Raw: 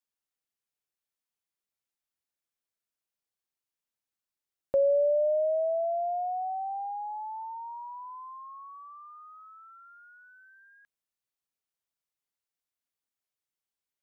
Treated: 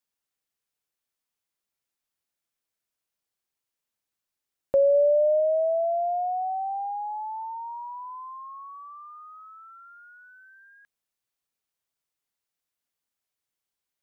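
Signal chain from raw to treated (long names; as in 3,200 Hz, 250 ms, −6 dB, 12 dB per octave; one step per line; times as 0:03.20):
0:04.94–0:05.40: low-shelf EQ 350 Hz +2.5 dB
level +4 dB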